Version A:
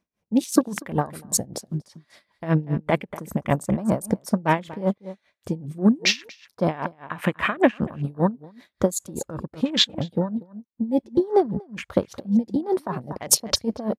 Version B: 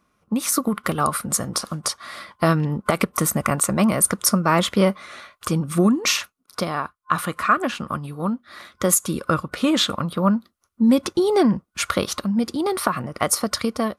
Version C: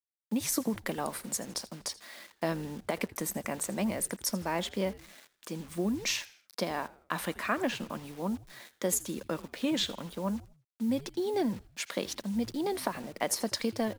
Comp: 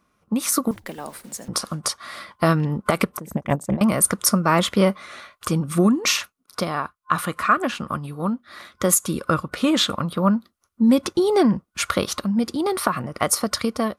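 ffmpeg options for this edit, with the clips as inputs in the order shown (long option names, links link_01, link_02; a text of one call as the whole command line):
ffmpeg -i take0.wav -i take1.wav -i take2.wav -filter_complex "[1:a]asplit=3[link_01][link_02][link_03];[link_01]atrim=end=0.712[link_04];[2:a]atrim=start=0.708:end=1.482[link_05];[link_02]atrim=start=1.478:end=3.182[link_06];[0:a]atrim=start=3.178:end=3.812[link_07];[link_03]atrim=start=3.808[link_08];[link_04][link_05]acrossfade=duration=0.004:curve1=hsin:curve2=hsin[link_09];[link_09][link_06]acrossfade=duration=0.004:curve1=hsin:curve2=hsin[link_10];[link_10][link_07]acrossfade=duration=0.004:curve1=hsin:curve2=hsin[link_11];[link_11][link_08]acrossfade=duration=0.004:curve1=hsin:curve2=hsin" out.wav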